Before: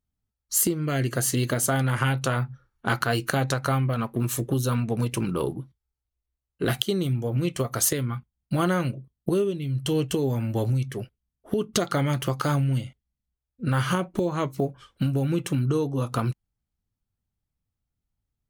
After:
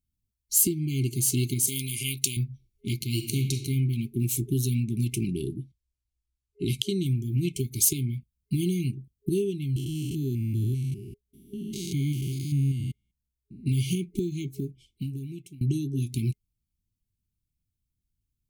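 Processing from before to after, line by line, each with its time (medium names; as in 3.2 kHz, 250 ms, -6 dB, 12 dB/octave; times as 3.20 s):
1.67–2.37 s: tilt EQ +3.5 dB/octave
3.13–3.59 s: reverb throw, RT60 0.87 s, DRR 5.5 dB
5.27–7.06 s: low-pass 9.4 kHz
9.76–13.66 s: spectrogram pixelated in time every 200 ms
14.18–15.61 s: fade out, to -24 dB
whole clip: treble shelf 5.1 kHz +8 dB; FFT band-reject 410–2100 Hz; bass shelf 260 Hz +6 dB; trim -5 dB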